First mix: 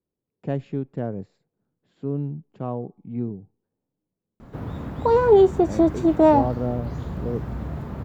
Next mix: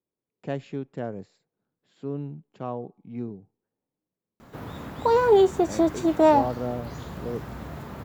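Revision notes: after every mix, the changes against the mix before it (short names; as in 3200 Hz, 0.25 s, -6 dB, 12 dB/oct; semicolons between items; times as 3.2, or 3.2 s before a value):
master: add tilt +2.5 dB/oct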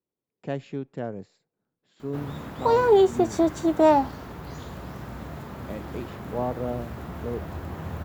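background: entry -2.40 s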